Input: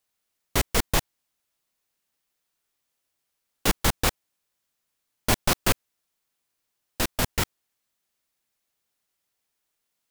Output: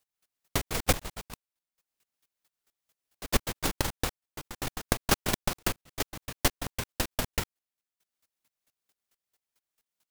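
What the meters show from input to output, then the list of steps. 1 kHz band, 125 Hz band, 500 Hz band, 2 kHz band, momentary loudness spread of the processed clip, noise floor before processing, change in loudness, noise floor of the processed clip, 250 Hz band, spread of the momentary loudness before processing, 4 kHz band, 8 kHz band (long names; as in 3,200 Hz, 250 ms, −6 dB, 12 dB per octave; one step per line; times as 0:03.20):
−3.5 dB, −3.5 dB, −2.5 dB, −3.5 dB, 15 LU, −80 dBFS, −5.5 dB, below −85 dBFS, −3.0 dB, 7 LU, −3.5 dB, −3.5 dB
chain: delay with pitch and tempo change per echo 212 ms, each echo +2 semitones, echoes 3, each echo −6 dB
downward compressor 3 to 1, threshold −25 dBFS, peak gain reduction 8 dB
square-wave tremolo 4.5 Hz, depth 65%, duty 15%
transient designer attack +9 dB, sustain −9 dB
level +1 dB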